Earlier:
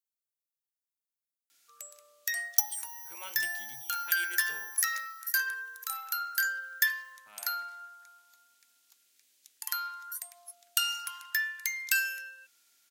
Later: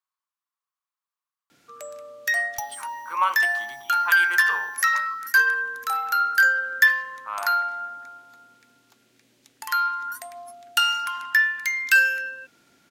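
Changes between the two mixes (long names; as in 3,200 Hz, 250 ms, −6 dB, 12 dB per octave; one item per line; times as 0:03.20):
speech: add high-pass with resonance 1,100 Hz, resonance Q 7.1
second sound −8.5 dB
master: remove first difference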